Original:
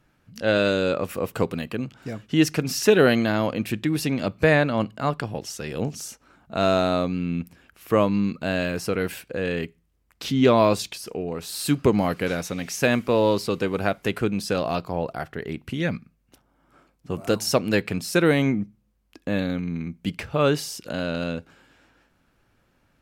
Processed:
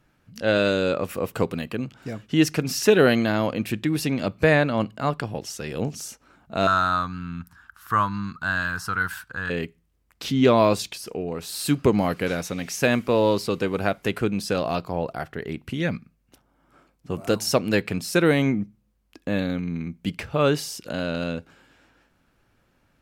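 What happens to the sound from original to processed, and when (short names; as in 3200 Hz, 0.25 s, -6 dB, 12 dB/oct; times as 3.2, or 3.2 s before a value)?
6.67–9.5 EQ curve 100 Hz 0 dB, 540 Hz -19 dB, 950 Hz +4 dB, 1500 Hz +12 dB, 2300 Hz -11 dB, 3600 Hz -2 dB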